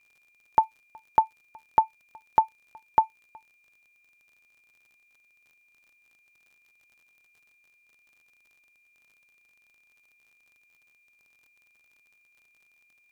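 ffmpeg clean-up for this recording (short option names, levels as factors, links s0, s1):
-af "adeclick=t=4,bandreject=f=2400:w=30"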